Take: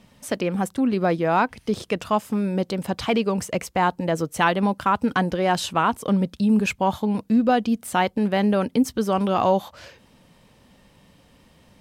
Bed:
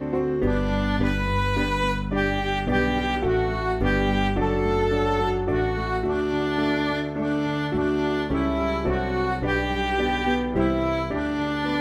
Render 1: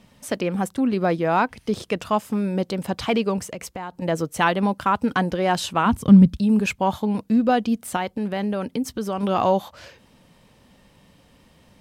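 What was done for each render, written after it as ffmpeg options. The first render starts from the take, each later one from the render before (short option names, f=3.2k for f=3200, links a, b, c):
-filter_complex "[0:a]asettb=1/sr,asplit=3[a][b][c];[a]atrim=end=3.384[d];[b]atrim=start=3.38:end=4.02,asetpts=PTS-STARTPTS,afade=t=in:d=0.004:c=qsin,afade=t=out:st=0.636:d=0.004:c=qsin,acompressor=threshold=-28dB:ratio=10:attack=3.2:release=140:knee=1:detection=peak[e];[c]atrim=start=4.016[f];[d][e]acrossfade=d=0.004:c1=hsin:c2=qsin[g];[g][f]acrossfade=d=0.004:c1=qsin:c2=hsin,asplit=3[h][i][j];[h]afade=t=out:st=5.85:d=0.02[k];[i]asubboost=boost=9:cutoff=170,afade=t=in:st=5.85:d=0.02,afade=t=out:st=6.37:d=0.02[l];[j]afade=t=in:st=6.37:d=0.02[m];[k][l][m]amix=inputs=3:normalize=0,asettb=1/sr,asplit=3[n][o][p];[n]atrim=end=7.964[q];[o]atrim=start=7.96:end=9.23,asetpts=PTS-STARTPTS,afade=t=in:d=0.004:c=qsin,afade=t=out:st=1.266:d=0.004:c=qsin,acompressor=threshold=-25dB:ratio=2:attack=3.2:release=140:knee=1:detection=peak[r];[p]atrim=start=9.226[s];[q][r]acrossfade=d=0.004:c1=hsin:c2=qsin[t];[t][s]acrossfade=d=0.004:c1=qsin:c2=hsin"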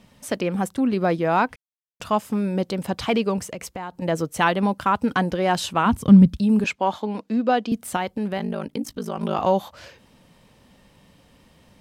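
-filter_complex "[0:a]asettb=1/sr,asplit=3[a][b][c];[a]atrim=end=6.644[d];[b]atrim=start=6.64:end=7.72,asetpts=PTS-STARTPTS,afade=t=in:d=0.004:c=qsin,afade=t=out:st=1.076:d=0.004:c=qsin,acrossover=split=220 7300:gain=0.112 1 0.178[e][f][g];[e][f][g]amix=inputs=3:normalize=0[h];[c]atrim=start=7.716[i];[d][h]acrossfade=d=0.004:c1=hsin:c2=qsin[j];[j][i]acrossfade=d=0.004:c1=qsin:c2=hsin,asettb=1/sr,asplit=3[k][l][m];[k]atrim=end=8.384[n];[l]atrim=start=8.38:end=9.47,asetpts=PTS-STARTPTS,afade=t=in:d=0.004:c=qsin,afade=t=out:st=1.086:d=0.004:c=qsin,aeval=exprs='val(0)*sin(2*PI*26*n/s)':c=same[o];[m]atrim=start=9.466[p];[n][o]acrossfade=d=0.004:c1=hsin:c2=qsin[q];[q][p]acrossfade=d=0.004:c1=qsin:c2=hsin,asplit=3[r][s][t];[r]atrim=end=1.56,asetpts=PTS-STARTPTS,afade=t=out:st=1.556:d=0.004:c=hsin[u];[s]atrim=start=1.56:end=2,asetpts=PTS-STARTPTS,volume=0[v];[t]atrim=start=2,asetpts=PTS-STARTPTS,afade=t=in:d=0.004:c=hsin[w];[u][v][w]concat=n=3:v=0:a=1"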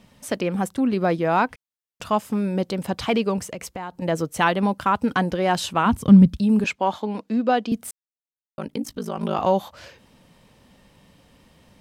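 -filter_complex "[0:a]asplit=3[a][b][c];[a]atrim=end=7.91,asetpts=PTS-STARTPTS,afade=t=out:st=7.906:d=0.004:c=hsin[d];[b]atrim=start=7.91:end=8.58,asetpts=PTS-STARTPTS,volume=0[e];[c]atrim=start=8.58,asetpts=PTS-STARTPTS,afade=t=in:d=0.004:c=hsin[f];[d][e][f]concat=n=3:v=0:a=1"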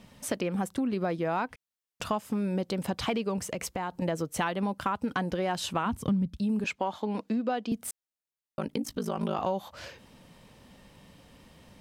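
-af "acompressor=threshold=-27dB:ratio=5"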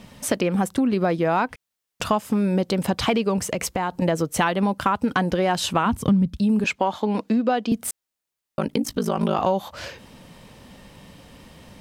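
-af "volume=8.5dB"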